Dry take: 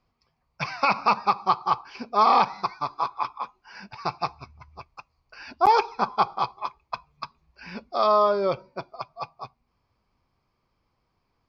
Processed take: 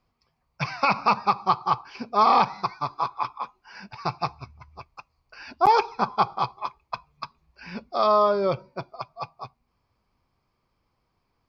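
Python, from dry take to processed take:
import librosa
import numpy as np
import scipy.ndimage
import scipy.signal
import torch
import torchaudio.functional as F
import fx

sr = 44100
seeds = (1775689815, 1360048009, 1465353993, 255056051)

y = fx.dynamic_eq(x, sr, hz=120.0, q=1.1, threshold_db=-49.0, ratio=4.0, max_db=7)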